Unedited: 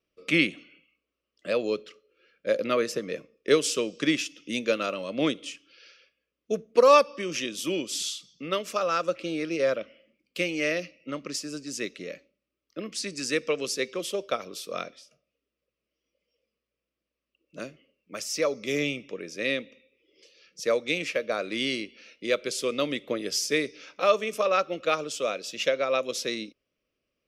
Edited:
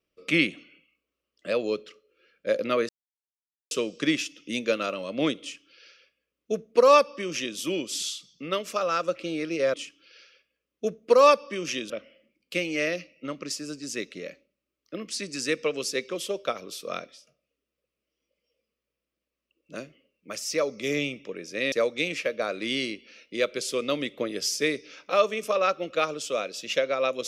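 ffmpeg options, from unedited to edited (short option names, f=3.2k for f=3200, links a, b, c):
-filter_complex "[0:a]asplit=6[a][b][c][d][e][f];[a]atrim=end=2.89,asetpts=PTS-STARTPTS,afade=t=out:st=2.886:d=0.004:c=hsin[g];[b]atrim=start=2.89:end=3.71,asetpts=PTS-STARTPTS,volume=0[h];[c]atrim=start=3.71:end=9.742,asetpts=PTS-STARTPTS,afade=t=in:d=0.004:c=hsin[i];[d]atrim=start=5.408:end=7.572[j];[e]atrim=start=9.738:end=19.562[k];[f]atrim=start=20.618[l];[g][h][i]concat=n=3:v=0:a=1[m];[m][j]acrossfade=d=0.004:c1=hsin:c2=hsin[n];[n][k]acrossfade=d=0.004:c1=hsin:c2=hsin[o];[o][l]acrossfade=d=0.004:c1=hsin:c2=hsin"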